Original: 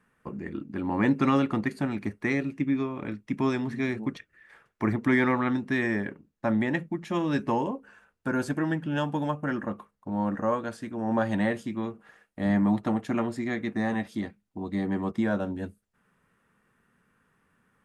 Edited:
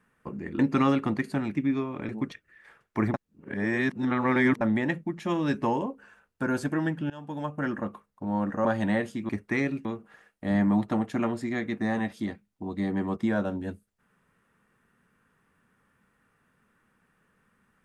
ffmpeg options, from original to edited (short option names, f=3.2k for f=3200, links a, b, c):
-filter_complex "[0:a]asplit=10[a][b][c][d][e][f][g][h][i][j];[a]atrim=end=0.592[k];[b]atrim=start=1.058:end=2.022[l];[c]atrim=start=2.578:end=3.122[m];[d]atrim=start=3.938:end=4.992[n];[e]atrim=start=4.988:end=6.462,asetpts=PTS-STARTPTS,areverse[o];[f]atrim=start=6.458:end=8.95,asetpts=PTS-STARTPTS,afade=t=out:st=2.488:d=0.004:c=hsin:silence=0.0668344[p];[g]atrim=start=8.95:end=10.502,asetpts=PTS-STARTPTS,afade=t=in:d=0.55:silence=0.0668344[q];[h]atrim=start=11.158:end=11.802[r];[i]atrim=start=2.018:end=2.582[s];[j]atrim=start=11.798[t];[k][l]acrossfade=d=0.004:c1=hsin:c2=hsin[u];[u][m]acrossfade=d=0.004:c1=hsin:c2=hsin[v];[v][n]acrossfade=d=0.004:c1=hsin:c2=hsin[w];[w][o]acrossfade=d=0.004:c1=hsin:c2=hsin[x];[p][q]concat=n=2:v=0:a=1[y];[x][y]acrossfade=d=0.004:c1=hsin:c2=hsin[z];[z][r]acrossfade=d=0.004:c1=hsin:c2=hsin[aa];[aa][s]acrossfade=d=0.004:c1=hsin:c2=hsin[ab];[ab][t]acrossfade=d=0.004:c1=hsin:c2=hsin"